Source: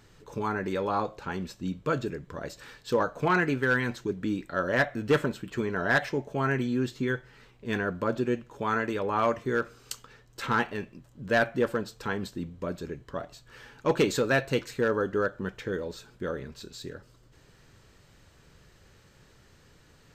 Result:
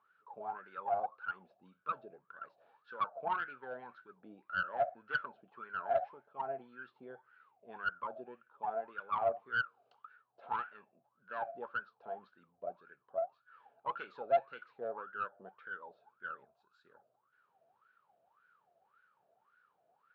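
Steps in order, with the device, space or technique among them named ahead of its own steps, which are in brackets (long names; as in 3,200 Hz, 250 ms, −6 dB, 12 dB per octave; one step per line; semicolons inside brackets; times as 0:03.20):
0:16.45–0:16.85: octave-band graphic EQ 125/250/500/1,000/2,000/4,000/8,000 Hz −4/−10/−10/+4/−7/−6/+12 dB
wah-wah guitar rig (LFO wah 1.8 Hz 660–1,500 Hz, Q 22; tube saturation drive 30 dB, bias 0.3; loudspeaker in its box 110–4,100 Hz, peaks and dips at 200 Hz +3 dB, 300 Hz −5 dB, 1,000 Hz −5 dB, 1,900 Hz −9 dB)
level +10 dB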